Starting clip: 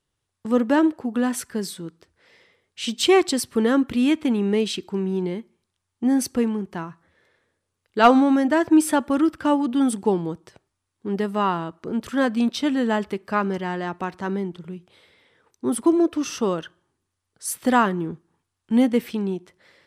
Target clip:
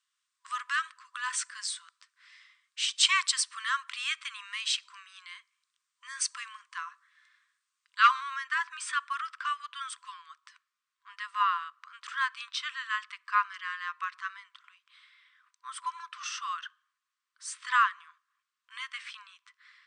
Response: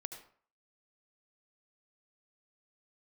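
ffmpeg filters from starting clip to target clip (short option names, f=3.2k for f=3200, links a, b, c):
-af "asetnsamples=n=441:p=0,asendcmd='8 highshelf g -11.5',highshelf=f=5.7k:g=2,afftfilt=real='re*between(b*sr/4096,1000,9300)':imag='im*between(b*sr/4096,1000,9300)':win_size=4096:overlap=0.75"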